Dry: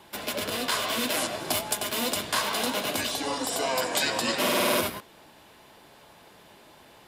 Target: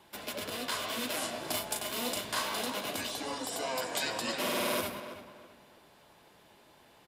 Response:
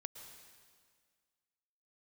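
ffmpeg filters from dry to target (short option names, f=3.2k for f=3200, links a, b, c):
-filter_complex "[0:a]asplit=3[a][b][c];[a]afade=t=out:st=1.21:d=0.02[d];[b]asplit=2[e][f];[f]adelay=37,volume=-5dB[g];[e][g]amix=inputs=2:normalize=0,afade=t=in:st=1.21:d=0.02,afade=t=out:st=2.61:d=0.02[h];[c]afade=t=in:st=2.61:d=0.02[i];[d][h][i]amix=inputs=3:normalize=0,asplit=2[j][k];[k]adelay=328,lowpass=f=2.6k:p=1,volume=-11dB,asplit=2[l][m];[m]adelay=328,lowpass=f=2.6k:p=1,volume=0.33,asplit=2[n][o];[o]adelay=328,lowpass=f=2.6k:p=1,volume=0.33,asplit=2[p][q];[q]adelay=328,lowpass=f=2.6k:p=1,volume=0.33[r];[j][l][n][p][r]amix=inputs=5:normalize=0,volume=-7.5dB"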